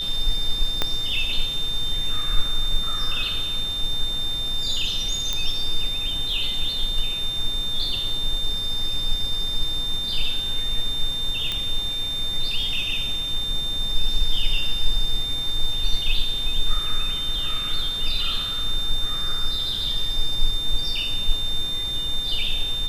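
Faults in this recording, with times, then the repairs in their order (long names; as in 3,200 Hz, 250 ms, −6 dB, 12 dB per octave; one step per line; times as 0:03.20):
whistle 3,600 Hz −25 dBFS
0:00.82: click −7 dBFS
0:05.33: click −10 dBFS
0:11.52: click −12 dBFS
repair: click removal
notch filter 3,600 Hz, Q 30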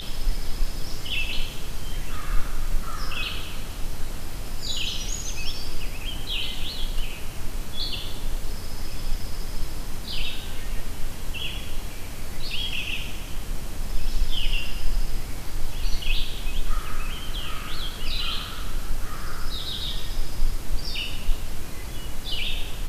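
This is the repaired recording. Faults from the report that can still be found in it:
0:00.82: click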